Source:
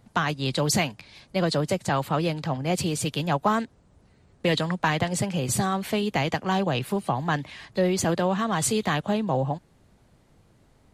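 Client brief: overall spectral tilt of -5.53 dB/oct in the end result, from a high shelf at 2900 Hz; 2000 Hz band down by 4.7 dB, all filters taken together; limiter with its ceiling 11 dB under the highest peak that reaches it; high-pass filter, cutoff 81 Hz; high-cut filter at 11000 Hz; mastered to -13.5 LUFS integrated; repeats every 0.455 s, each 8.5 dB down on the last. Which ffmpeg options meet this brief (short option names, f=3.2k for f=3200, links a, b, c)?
-af "highpass=81,lowpass=11k,equalizer=f=2k:t=o:g=-3.5,highshelf=f=2.9k:g=-7,alimiter=limit=-22dB:level=0:latency=1,aecho=1:1:455|910|1365|1820:0.376|0.143|0.0543|0.0206,volume=18dB"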